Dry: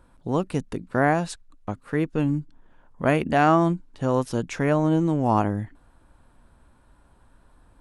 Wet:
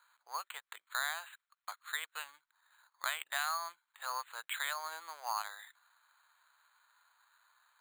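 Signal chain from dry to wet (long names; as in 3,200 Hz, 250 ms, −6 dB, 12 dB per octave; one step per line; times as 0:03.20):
inverse Chebyshev high-pass filter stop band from 260 Hz, stop band 70 dB
downward compressor 5 to 1, threshold −32 dBFS, peak gain reduction 10 dB
bad sample-rate conversion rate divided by 8×, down filtered, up hold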